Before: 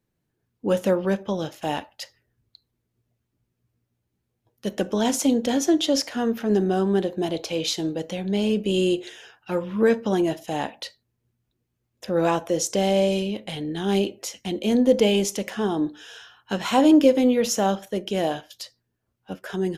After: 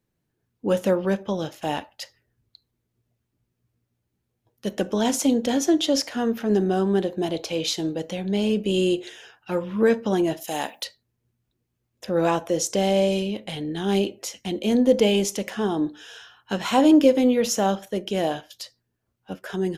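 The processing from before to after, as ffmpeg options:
ffmpeg -i in.wav -filter_complex "[0:a]asplit=3[link_01][link_02][link_03];[link_01]afade=type=out:start_time=10.39:duration=0.02[link_04];[link_02]aemphasis=mode=production:type=bsi,afade=type=in:start_time=10.39:duration=0.02,afade=type=out:start_time=10.83:duration=0.02[link_05];[link_03]afade=type=in:start_time=10.83:duration=0.02[link_06];[link_04][link_05][link_06]amix=inputs=3:normalize=0" out.wav

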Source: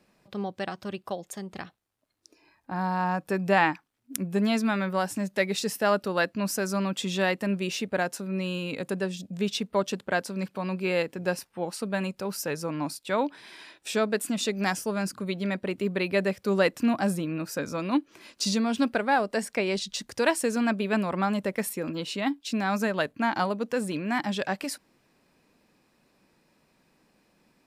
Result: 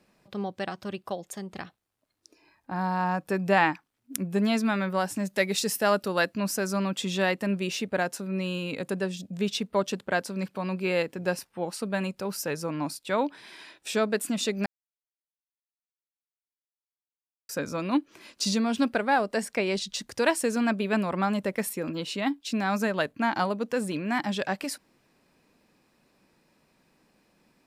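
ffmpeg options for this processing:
ffmpeg -i in.wav -filter_complex "[0:a]asettb=1/sr,asplit=3[link_01][link_02][link_03];[link_01]atrim=end=5.254[link_04];[link_02]atrim=start=5.25:end=6.4,asetpts=PTS-STARTPTS,afade=type=in:duration=0.004:curve=qsin,afade=type=out:start_time=1.146:duration=0.004:curve=qsin,highshelf=frequency=5200:gain=6.5[link_05];[link_03]atrim=start=6.396[link_06];[link_04][link_05]acrossfade=duration=0.004:curve1=hsin:curve2=qsin[link_07];[link_07][link_06]acrossfade=duration=0.004:curve1=qsin:curve2=hsin,asplit=3[link_08][link_09][link_10];[link_08]atrim=end=14.66,asetpts=PTS-STARTPTS,afade=type=out:start_time=14.656:duration=0.004:curve=hsin[link_11];[link_09]atrim=start=14.66:end=17.49,asetpts=PTS-STARTPTS,volume=0[link_12];[link_10]atrim=start=17.49,asetpts=PTS-STARTPTS,afade=type=in:duration=0.004:curve=hsin[link_13];[link_11][link_12][link_13]concat=n=3:v=0:a=1" out.wav

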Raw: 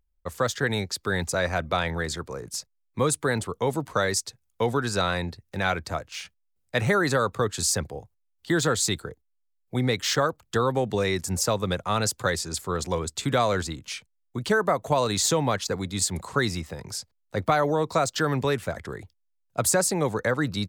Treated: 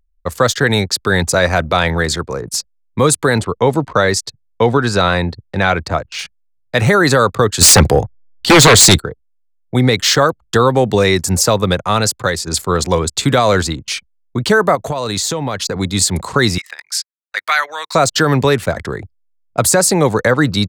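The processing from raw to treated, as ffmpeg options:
ffmpeg -i in.wav -filter_complex "[0:a]asettb=1/sr,asplit=3[link_01][link_02][link_03];[link_01]atrim=end=3.414[link_04];[link_02]atrim=start=3.41:end=6.19,asetpts=PTS-STARTPTS,afade=type=in:duration=0.004:curve=qsin,afade=type=out:start_time=2.776:duration=0.004:curve=qsin,lowpass=frequency=3800:poles=1[link_05];[link_03]atrim=start=6.186[link_06];[link_04][link_05]acrossfade=duration=0.004:curve1=hsin:curve2=qsin[link_07];[link_07][link_06]acrossfade=duration=0.004:curve1=qsin:curve2=hsin,asettb=1/sr,asplit=3[link_08][link_09][link_10];[link_08]atrim=end=7.614[link_11];[link_09]atrim=start=7.61:end=8.99,asetpts=PTS-STARTPTS,afade=type=in:duration=0.004:curve=qsin,afade=type=out:start_time=1.376:duration=0.004:curve=qsin,aeval=exprs='0.266*sin(PI/2*3.16*val(0)/0.266)':channel_layout=same[link_12];[link_10]atrim=start=8.986[link_13];[link_11][link_12]acrossfade=duration=0.004:curve1=hsin:curve2=qsin[link_14];[link_14][link_13]acrossfade=duration=0.004:curve1=qsin:curve2=hsin,asettb=1/sr,asplit=3[link_15][link_16][link_17];[link_15]atrim=end=14.754[link_18];[link_16]atrim=start=14.75:end=15.76,asetpts=PTS-STARTPTS,afade=type=in:duration=0.004:curve=qsin,afade=type=out:start_time=1.006:duration=0.004:curve=qsin,acompressor=threshold=-29dB:ratio=5:attack=3.2:release=140:knee=1:detection=peak[link_19];[link_17]atrim=start=15.756[link_20];[link_18][link_19]acrossfade=duration=0.004:curve1=hsin:curve2=qsin[link_21];[link_21][link_20]acrossfade=duration=0.004:curve1=qsin:curve2=hsin,asettb=1/sr,asplit=3[link_22][link_23][link_24];[link_22]atrim=end=16.584[link_25];[link_23]atrim=start=16.58:end=17.95,asetpts=PTS-STARTPTS,afade=type=in:duration=0.004:curve=qsin,afade=type=out:start_time=1.366:duration=0.004:curve=qsin,highpass=frequency=1800:width_type=q:width=1.8[link_26];[link_24]atrim=start=17.946[link_27];[link_25][link_26]acrossfade=duration=0.004:curve1=hsin:curve2=qsin[link_28];[link_28][link_27]acrossfade=duration=0.004:curve1=qsin:curve2=hsin,asplit=2[link_29][link_30];[link_29]atrim=end=12.47,asetpts=PTS-STARTPTS,afade=type=out:start_time=11.54:duration=0.93:silence=0.501187[link_31];[link_30]atrim=start=12.47,asetpts=PTS-STARTPTS,afade=type=in:duration=0.004:curve=hsin:silence=0.501187[link_32];[link_31][link_32]concat=n=2:v=0:a=1,anlmdn=0.0398,equalizer=frequency=4300:width=4.4:gain=2.5,alimiter=level_in=13.5dB:limit=-1dB:release=50:level=0:latency=1,volume=-1dB" out.wav

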